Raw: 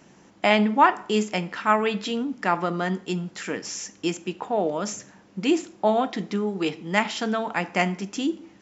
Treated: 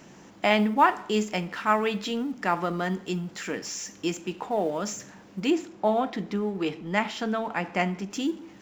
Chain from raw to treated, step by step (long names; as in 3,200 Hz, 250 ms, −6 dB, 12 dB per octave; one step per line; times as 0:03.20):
mu-law and A-law mismatch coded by mu
0:05.50–0:08.11: high-shelf EQ 4,500 Hz −8.5 dB
level −3 dB